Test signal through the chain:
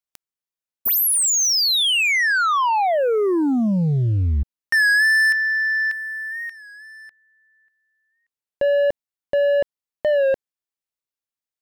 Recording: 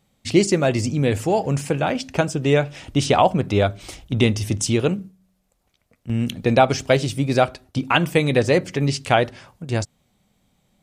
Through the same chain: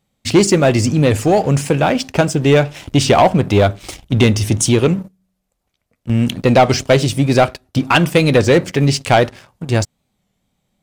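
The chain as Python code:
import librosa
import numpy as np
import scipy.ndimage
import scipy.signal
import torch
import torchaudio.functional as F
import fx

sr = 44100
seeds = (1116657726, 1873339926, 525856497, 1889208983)

y = fx.leveller(x, sr, passes=2)
y = fx.record_warp(y, sr, rpm=33.33, depth_cents=100.0)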